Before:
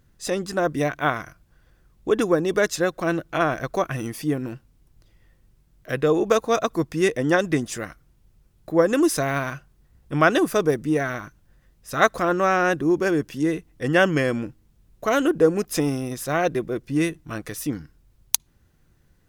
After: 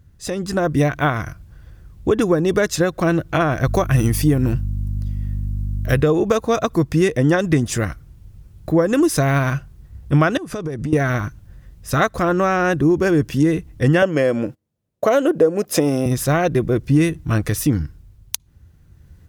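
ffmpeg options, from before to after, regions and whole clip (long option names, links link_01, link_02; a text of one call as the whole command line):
ffmpeg -i in.wav -filter_complex "[0:a]asettb=1/sr,asplit=3[link_01][link_02][link_03];[link_01]atrim=end=3.654[link_04];[link_02]atrim=start=3.65:end=6.02,asetpts=PTS-STARTPTS,afade=type=in:duration=0.004:curve=qsin,afade=type=out:start_time=2.366:duration=0.004:curve=qsin,highshelf=frequency=6700:gain=7,aeval=exprs='val(0)+0.0112*(sin(2*PI*50*n/s)+sin(2*PI*2*50*n/s)/2+sin(2*PI*3*50*n/s)/3+sin(2*PI*4*50*n/s)/4+sin(2*PI*5*50*n/s)/5)':channel_layout=same[link_05];[link_03]atrim=start=6.016[link_06];[link_04][link_05]acrossfade=duration=0.004:curve1=hsin:curve2=qsin[link_07];[link_07][link_06]acrossfade=duration=0.004:curve1=qsin:curve2=hsin,asettb=1/sr,asplit=3[link_08][link_09][link_10];[link_08]atrim=end=10.374[link_11];[link_09]atrim=start=10.37:end=10.93,asetpts=PTS-STARTPTS,afade=type=in:duration=0.004:curve=qsin,afade=type=out:start_time=0.556:duration=0.004:curve=qsin,lowpass=9300,acompressor=threshold=-32dB:ratio=10:attack=3.2:release=140:knee=1:detection=peak[link_12];[link_10]atrim=start=10.926[link_13];[link_11][link_12]acrossfade=duration=0.004:curve1=hsin:curve2=qsin[link_14];[link_14][link_13]acrossfade=duration=0.004:curve1=qsin:curve2=hsin,asettb=1/sr,asplit=3[link_15][link_16][link_17];[link_15]atrim=end=14.024[link_18];[link_16]atrim=start=14.02:end=16.06,asetpts=PTS-STARTPTS,afade=type=in:duration=0.004:curve=qsin,afade=type=out:start_time=2.036:duration=0.004:curve=qsin,agate=range=-22dB:threshold=-49dB:ratio=16:release=100:detection=peak,highpass=200,equalizer=frequency=570:width=2.3:gain=10[link_19];[link_17]atrim=start=16.056[link_20];[link_18][link_19]acrossfade=duration=0.004:curve1=hsin:curve2=qsin[link_21];[link_21][link_20]acrossfade=duration=0.004:curve1=qsin:curve2=hsin,acompressor=threshold=-24dB:ratio=3,equalizer=frequency=80:width_type=o:width=1.9:gain=14.5,dynaudnorm=framelen=350:gausssize=3:maxgain=8dB" out.wav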